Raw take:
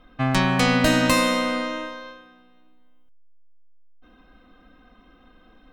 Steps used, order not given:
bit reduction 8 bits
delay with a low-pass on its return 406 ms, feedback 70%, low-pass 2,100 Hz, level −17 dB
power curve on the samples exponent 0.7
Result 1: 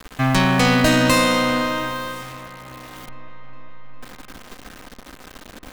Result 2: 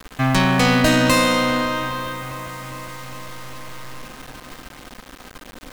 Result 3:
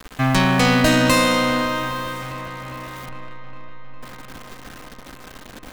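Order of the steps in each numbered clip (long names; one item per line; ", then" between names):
bit reduction, then power curve on the samples, then delay with a low-pass on its return
delay with a low-pass on its return, then bit reduction, then power curve on the samples
bit reduction, then delay with a low-pass on its return, then power curve on the samples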